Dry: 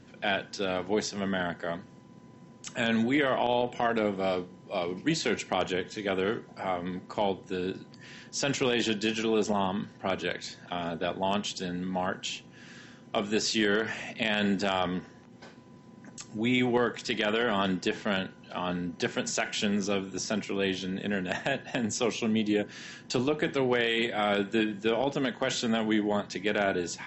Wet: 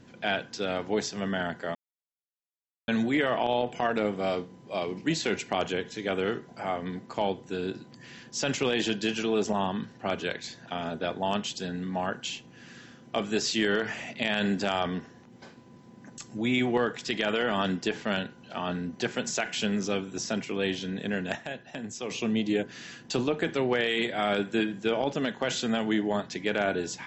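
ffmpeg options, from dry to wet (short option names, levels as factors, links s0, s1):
-filter_complex "[0:a]asplit=5[s0][s1][s2][s3][s4];[s0]atrim=end=1.75,asetpts=PTS-STARTPTS,afade=t=out:st=1.746:d=0.004:c=hsin[s5];[s1]atrim=start=1.75:end=2.88,asetpts=PTS-STARTPTS,volume=0[s6];[s2]atrim=start=2.88:end=21.352,asetpts=PTS-STARTPTS,afade=t=in:d=0.004:c=hsin[s7];[s3]atrim=start=21.348:end=22.102,asetpts=PTS-STARTPTS,volume=0.422[s8];[s4]atrim=start=22.098[s9];[s5][s6][s7]concat=n=3:v=0:a=1[s10];[s10][s8]acrossfade=d=0.004:c1=hsin:c2=hsin[s11];[s11][s9]acrossfade=d=0.004:c1=hsin:c2=hsin"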